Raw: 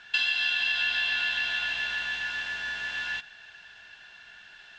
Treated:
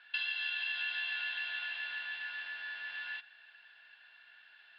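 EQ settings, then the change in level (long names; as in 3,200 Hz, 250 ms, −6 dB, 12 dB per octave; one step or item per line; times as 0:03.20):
resonant band-pass 3,000 Hz, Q 0.57
elliptic low-pass filter 4,700 Hz, stop band 40 dB
high-shelf EQ 2,200 Hz −9 dB
−3.5 dB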